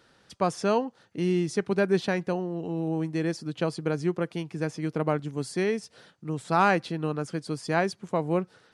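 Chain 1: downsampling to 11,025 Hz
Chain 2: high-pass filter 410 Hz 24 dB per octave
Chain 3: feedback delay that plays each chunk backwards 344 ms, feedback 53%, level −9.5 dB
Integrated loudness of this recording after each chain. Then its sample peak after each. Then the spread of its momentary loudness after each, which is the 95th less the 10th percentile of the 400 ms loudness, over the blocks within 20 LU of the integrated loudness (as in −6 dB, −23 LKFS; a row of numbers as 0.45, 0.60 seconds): −28.5, −31.0, −28.0 LKFS; −10.0, −10.0, −10.0 dBFS; 8, 11, 7 LU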